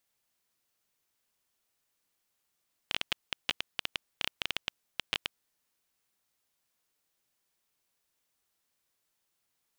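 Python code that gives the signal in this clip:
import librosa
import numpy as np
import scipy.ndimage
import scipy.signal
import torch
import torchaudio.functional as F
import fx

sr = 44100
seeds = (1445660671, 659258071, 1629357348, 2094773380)

y = fx.geiger_clicks(sr, seeds[0], length_s=2.45, per_s=11.0, level_db=-11.5)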